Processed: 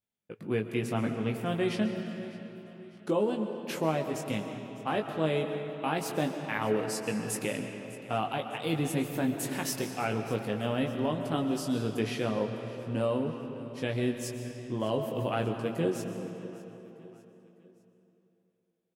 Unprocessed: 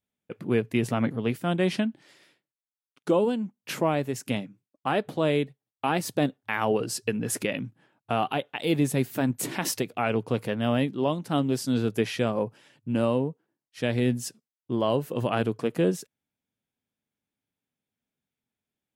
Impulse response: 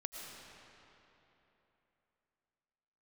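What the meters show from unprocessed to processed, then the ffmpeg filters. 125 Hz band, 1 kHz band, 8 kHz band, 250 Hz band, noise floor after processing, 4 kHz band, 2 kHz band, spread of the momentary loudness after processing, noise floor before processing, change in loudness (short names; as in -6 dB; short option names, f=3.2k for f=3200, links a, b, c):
-4.0 dB, -4.0 dB, -4.5 dB, -4.5 dB, -70 dBFS, -4.0 dB, -4.0 dB, 10 LU, under -85 dBFS, -4.5 dB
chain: -filter_complex "[0:a]aecho=1:1:603|1206|1809:0.112|0.0494|0.0217,asplit=2[a][b];[1:a]atrim=start_sample=2205,adelay=19[c];[b][c]afir=irnorm=-1:irlink=0,volume=-1.5dB[d];[a][d]amix=inputs=2:normalize=0,volume=-6dB"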